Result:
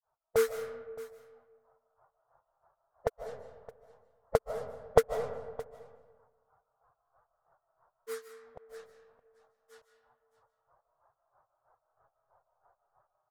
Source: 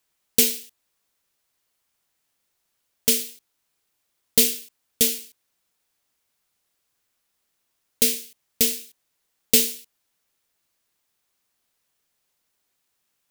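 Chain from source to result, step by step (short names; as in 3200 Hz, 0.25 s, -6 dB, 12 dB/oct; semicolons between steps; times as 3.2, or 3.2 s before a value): bin magnitudes rounded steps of 15 dB; low-pass opened by the level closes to 1100 Hz, open at -18.5 dBFS; EQ curve 140 Hz 0 dB, 230 Hz -26 dB, 660 Hz +12 dB, 1400 Hz +8 dB, 2600 Hz -26 dB; AGC gain up to 14 dB; in parallel at -10 dB: crossover distortion -32.5 dBFS; on the sum: grains 0.197 s, grains 3.1/s, spray 38 ms, pitch spread up and down by 0 st; echo 0.618 s -19 dB; on a send at -8 dB: reverb RT60 1.4 s, pre-delay 0.11 s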